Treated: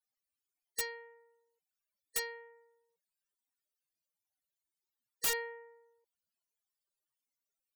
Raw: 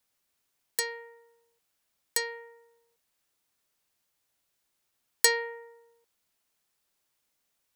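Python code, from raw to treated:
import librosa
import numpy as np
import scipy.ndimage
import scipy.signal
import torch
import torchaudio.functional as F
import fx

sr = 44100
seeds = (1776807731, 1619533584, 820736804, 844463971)

y = fx.spec_topn(x, sr, count=32)
y = (np.mod(10.0 ** (22.0 / 20.0) * y + 1.0, 2.0) - 1.0) / 10.0 ** (22.0 / 20.0)
y = fx.high_shelf(y, sr, hz=5100.0, db=4.5)
y = y * librosa.db_to_amplitude(-6.0)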